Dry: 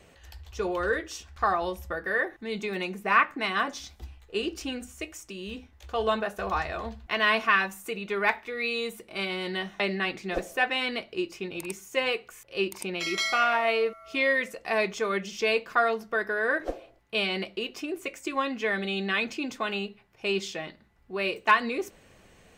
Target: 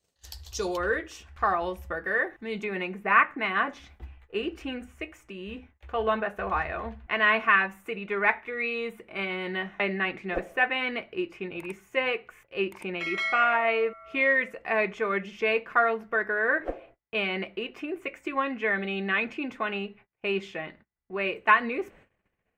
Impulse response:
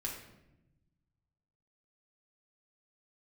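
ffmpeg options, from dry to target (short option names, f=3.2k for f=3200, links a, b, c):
-af "agate=range=-27dB:threshold=-52dB:ratio=16:detection=peak,asetnsamples=n=441:p=0,asendcmd='0.77 highshelf g -6;2.64 highshelf g -13.5',highshelf=f=3.3k:t=q:w=1.5:g=10" -ar 48000 -c:a libmp3lame -b:a 80k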